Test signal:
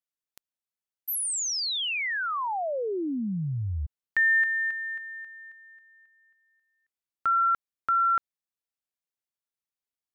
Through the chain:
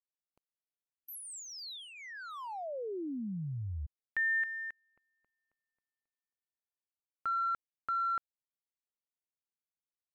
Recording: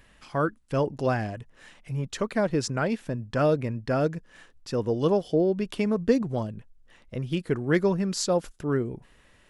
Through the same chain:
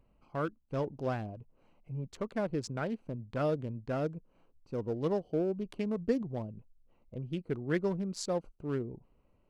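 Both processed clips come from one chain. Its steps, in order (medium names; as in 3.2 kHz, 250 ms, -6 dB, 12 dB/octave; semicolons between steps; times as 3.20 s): local Wiener filter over 25 samples; trim -8 dB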